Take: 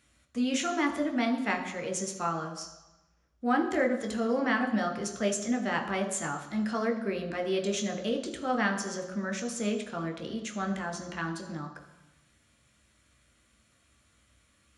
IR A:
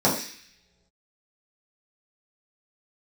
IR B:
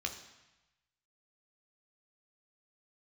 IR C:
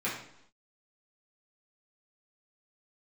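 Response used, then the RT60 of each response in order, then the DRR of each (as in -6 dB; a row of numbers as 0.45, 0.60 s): B; not exponential, 1.0 s, 0.75 s; -7.5, 3.0, -9.0 dB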